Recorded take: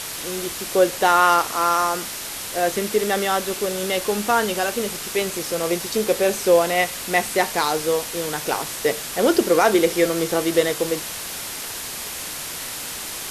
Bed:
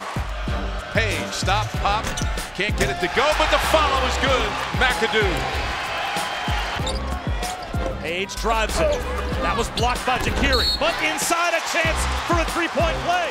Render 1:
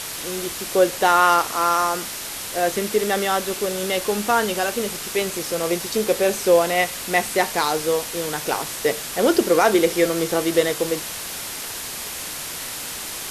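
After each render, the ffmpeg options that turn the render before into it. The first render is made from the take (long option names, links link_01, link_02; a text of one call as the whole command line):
ffmpeg -i in.wav -af anull out.wav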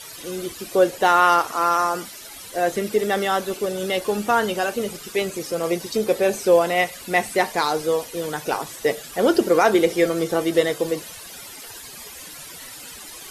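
ffmpeg -i in.wav -af "afftdn=noise_reduction=14:noise_floor=-32" out.wav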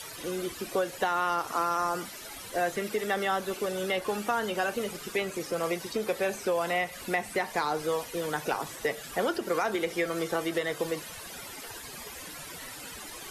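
ffmpeg -i in.wav -filter_complex "[0:a]alimiter=limit=-10dB:level=0:latency=1:release=223,acrossover=split=230|820|2500[link_01][link_02][link_03][link_04];[link_01]acompressor=threshold=-43dB:ratio=4[link_05];[link_02]acompressor=threshold=-33dB:ratio=4[link_06];[link_03]acompressor=threshold=-29dB:ratio=4[link_07];[link_04]acompressor=threshold=-43dB:ratio=4[link_08];[link_05][link_06][link_07][link_08]amix=inputs=4:normalize=0" out.wav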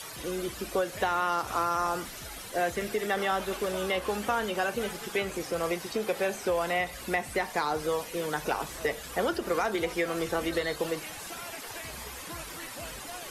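ffmpeg -i in.wav -i bed.wav -filter_complex "[1:a]volume=-23.5dB[link_01];[0:a][link_01]amix=inputs=2:normalize=0" out.wav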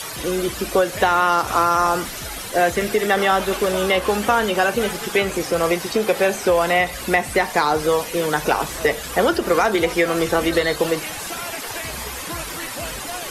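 ffmpeg -i in.wav -af "volume=11dB" out.wav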